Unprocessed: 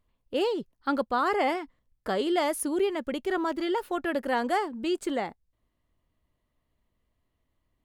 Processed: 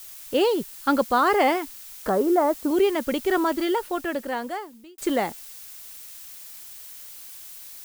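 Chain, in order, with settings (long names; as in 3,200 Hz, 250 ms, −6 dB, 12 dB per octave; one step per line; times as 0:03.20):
0:02.09–0:02.71: low-pass filter 1,400 Hz 24 dB per octave
background noise blue −48 dBFS
0:03.42–0:04.98: fade out
level +6 dB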